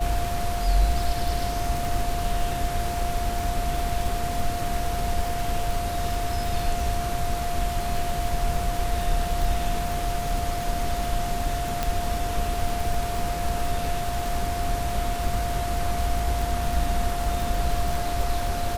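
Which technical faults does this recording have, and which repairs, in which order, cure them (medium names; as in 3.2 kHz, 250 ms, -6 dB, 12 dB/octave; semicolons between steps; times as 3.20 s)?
crackle 57 per s -27 dBFS
whine 700 Hz -29 dBFS
11.83 s: pop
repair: de-click; band-stop 700 Hz, Q 30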